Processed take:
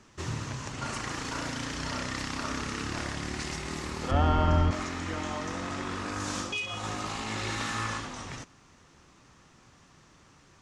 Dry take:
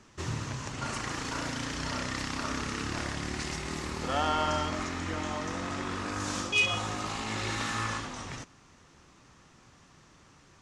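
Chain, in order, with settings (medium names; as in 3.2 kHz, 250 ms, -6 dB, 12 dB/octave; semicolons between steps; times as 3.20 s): 4.11–4.71 s: RIAA curve playback; 6.42–6.84 s: compression 6:1, threshold -31 dBFS, peak gain reduction 10 dB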